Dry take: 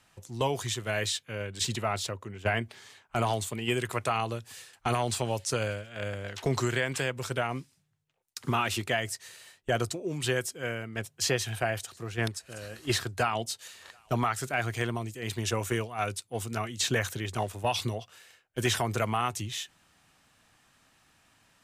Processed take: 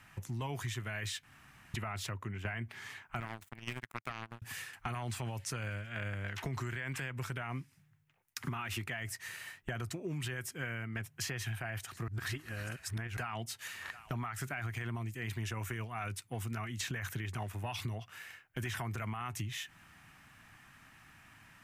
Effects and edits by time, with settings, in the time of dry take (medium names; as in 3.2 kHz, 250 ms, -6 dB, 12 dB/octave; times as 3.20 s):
1.23–1.74 s: room tone
3.20–4.42 s: power-law waveshaper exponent 3
12.08–13.17 s: reverse
whole clip: graphic EQ 125/500/2000/4000/8000 Hz +3/-10/+5/-8/-7 dB; peak limiter -25.5 dBFS; compression 4:1, threshold -44 dBFS; trim +6.5 dB